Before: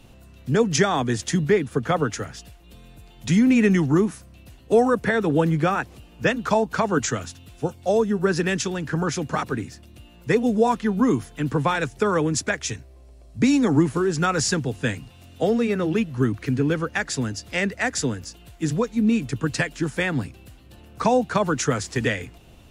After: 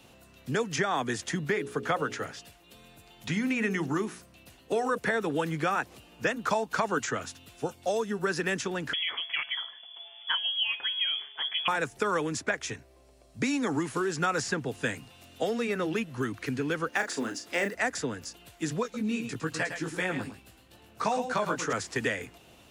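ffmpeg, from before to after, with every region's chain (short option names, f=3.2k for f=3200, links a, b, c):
-filter_complex "[0:a]asettb=1/sr,asplit=3[a][b][c];[a]atrim=end=1.514[d];[b]atrim=start=1.51:end=4.98,asetpts=PTS-STARTPTS,afade=t=in:d=0.004:c=qsin,afade=t=out:st=3.466:d=0.004:c=qsin,acrossover=split=4500[e][f];[f]acompressor=threshold=-47dB:ratio=4:attack=1:release=60[g];[e][g]amix=inputs=2:normalize=0,bandreject=f=60:t=h:w=6,bandreject=f=120:t=h:w=6,bandreject=f=180:t=h:w=6,bandreject=f=240:t=h:w=6,bandreject=f=300:t=h:w=6,bandreject=f=360:t=h:w=6,bandreject=f=420:t=h:w=6,bandreject=f=480:t=h:w=6,bandreject=f=540:t=h:w=6,bandreject=f=600:t=h:w=6[h];[c]atrim=start=4.976[i];[d][h]acrossfade=d=0.004:c1=hsin:c2=qsin[j];[j][i]acrossfade=d=0.004:c1=qsin:c2=hsin,asettb=1/sr,asplit=3[k][l][m];[k]atrim=end=8.934[n];[l]atrim=start=8.93:end=11.68,asetpts=PTS-STARTPTS,afade=t=in:d=0.004:c=qsin,afade=t=out:st=2.746:d=0.004:c=qsin,bandreject=f=141.3:t=h:w=4,bandreject=f=282.6:t=h:w=4,bandreject=f=423.9:t=h:w=4,bandreject=f=565.2:t=h:w=4,bandreject=f=706.5:t=h:w=4,bandreject=f=847.8:t=h:w=4,bandreject=f=989.1:t=h:w=4,bandreject=f=1.1304k:t=h:w=4,bandreject=f=1.2717k:t=h:w=4,bandreject=f=1.413k:t=h:w=4,bandreject=f=1.5543k:t=h:w=4,bandreject=f=1.6956k:t=h:w=4,bandreject=f=1.8369k:t=h:w=4,bandreject=f=1.9782k:t=h:w=4,lowpass=f=3k:t=q:w=0.5098,lowpass=f=3k:t=q:w=0.6013,lowpass=f=3k:t=q:w=0.9,lowpass=f=3k:t=q:w=2.563,afreqshift=-3500[o];[m]atrim=start=11.676[p];[n][o]acrossfade=d=0.004:c1=hsin:c2=qsin[q];[q][p]acrossfade=d=0.004:c1=qsin:c2=hsin,asettb=1/sr,asplit=3[r][s][t];[r]atrim=end=16.894[u];[s]atrim=start=16.89:end=17.75,asetpts=PTS-STARTPTS,afade=t=in:d=0.004:c=qsin,afade=t=out:st=0.856:d=0.004:c=qsin,lowshelf=f=190:t=q:w=1.5:g=-10,acrusher=bits=8:mode=log:mix=0:aa=0.000001,asplit=2[v][w];[w]adelay=35,volume=-7dB[x];[v][x]amix=inputs=2:normalize=0,atrim=end_sample=37926[y];[t]atrim=start=17.746[z];[u][y]acrossfade=d=0.004:c1=hsin:c2=qsin[aa];[aa][z]acrossfade=d=0.004:c1=qsin:c2=hsin,asettb=1/sr,asplit=3[ab][ac][ad];[ab]atrim=end=18.834[ae];[ac]atrim=start=18.83:end=21.73,asetpts=PTS-STARTPTS,afade=t=in:d=0.004:c=qsin,afade=t=out:st=2.896:d=0.004:c=qsin,flanger=delay=16:depth=3.3:speed=2.5,aecho=1:1:108:0.335,atrim=end_sample=127890[af];[ad]atrim=start=21.726[ag];[ae][af]acrossfade=d=0.004:c1=hsin:c2=qsin[ah];[ah][ag]acrossfade=d=0.004:c1=qsin:c2=hsin,lowshelf=f=260:g=-9.5,acrossover=split=1200|2400|6300[ai][aj][ak][al];[ai]acompressor=threshold=-27dB:ratio=4[am];[aj]acompressor=threshold=-31dB:ratio=4[an];[ak]acompressor=threshold=-43dB:ratio=4[ao];[al]acompressor=threshold=-43dB:ratio=4[ap];[am][an][ao][ap]amix=inputs=4:normalize=0,highpass=f=100:p=1"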